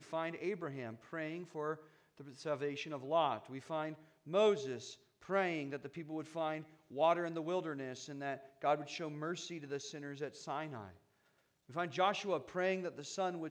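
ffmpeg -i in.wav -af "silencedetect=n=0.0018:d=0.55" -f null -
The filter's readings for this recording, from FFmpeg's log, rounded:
silence_start: 10.97
silence_end: 11.69 | silence_duration: 0.72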